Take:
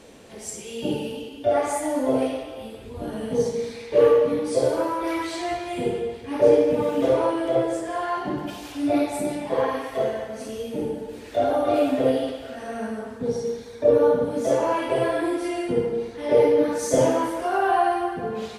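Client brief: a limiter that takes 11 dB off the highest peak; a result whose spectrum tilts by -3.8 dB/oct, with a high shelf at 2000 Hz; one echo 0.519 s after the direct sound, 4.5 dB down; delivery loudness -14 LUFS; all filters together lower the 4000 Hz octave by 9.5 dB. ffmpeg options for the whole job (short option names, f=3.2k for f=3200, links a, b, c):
-af "highshelf=f=2k:g=-7.5,equalizer=f=4k:t=o:g=-5.5,alimiter=limit=-17dB:level=0:latency=1,aecho=1:1:519:0.596,volume=12dB"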